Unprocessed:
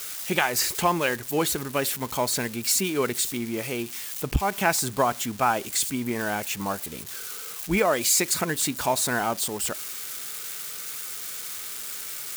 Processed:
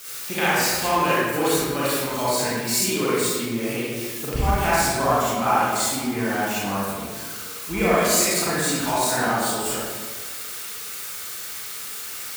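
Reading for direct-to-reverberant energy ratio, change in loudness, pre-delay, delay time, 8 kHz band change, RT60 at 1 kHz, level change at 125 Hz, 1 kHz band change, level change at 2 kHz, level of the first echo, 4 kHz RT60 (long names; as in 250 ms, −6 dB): −10.5 dB, +3.0 dB, 33 ms, no echo audible, +1.5 dB, 1.5 s, +4.0 dB, +4.5 dB, +4.0 dB, no echo audible, 0.95 s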